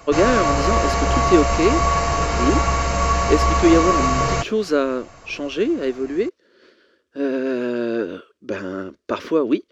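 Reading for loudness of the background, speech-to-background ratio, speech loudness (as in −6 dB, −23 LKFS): −19.5 LKFS, −2.5 dB, −22.0 LKFS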